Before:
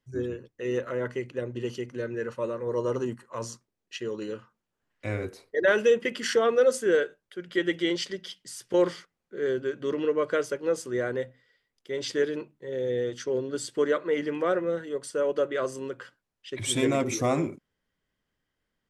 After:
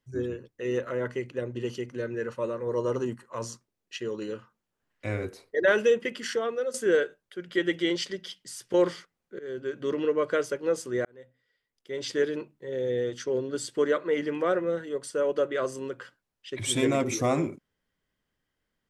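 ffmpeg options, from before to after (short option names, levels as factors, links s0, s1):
-filter_complex "[0:a]asplit=4[s0][s1][s2][s3];[s0]atrim=end=6.74,asetpts=PTS-STARTPTS,afade=t=out:st=5.75:d=0.99:silence=0.266073[s4];[s1]atrim=start=6.74:end=9.39,asetpts=PTS-STARTPTS,afade=t=in:d=0.004:c=hsin:silence=0.266073,afade=t=out:st=2.646:d=0.004:c=hsin:silence=0.125893[s5];[s2]atrim=start=9.39:end=11.05,asetpts=PTS-STARTPTS,afade=t=in:d=0.41:silence=0.125893,afade=t=out:st=1.656:d=0.004:c=hsin[s6];[s3]atrim=start=11.05,asetpts=PTS-STARTPTS,afade=t=in:d=1.17[s7];[s4][s5][s6][s7]concat=n=4:v=0:a=1"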